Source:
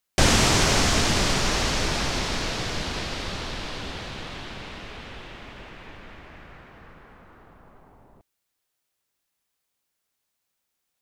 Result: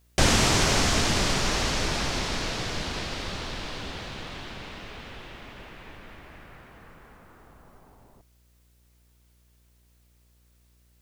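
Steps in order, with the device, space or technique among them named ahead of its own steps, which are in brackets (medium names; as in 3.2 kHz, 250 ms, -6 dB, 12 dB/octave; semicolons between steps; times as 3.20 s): video cassette with head-switching buzz (mains buzz 60 Hz, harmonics 11, -60 dBFS -9 dB/octave; white noise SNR 40 dB); trim -2 dB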